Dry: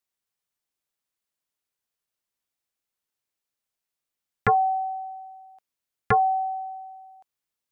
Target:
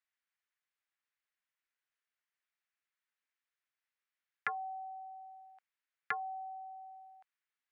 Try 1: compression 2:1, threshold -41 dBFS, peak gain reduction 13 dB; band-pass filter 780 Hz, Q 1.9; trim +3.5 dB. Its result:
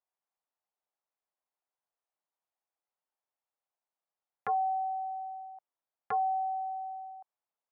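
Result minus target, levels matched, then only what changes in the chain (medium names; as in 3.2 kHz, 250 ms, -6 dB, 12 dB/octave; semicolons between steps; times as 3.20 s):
2 kHz band -18.5 dB
change: band-pass filter 1.8 kHz, Q 1.9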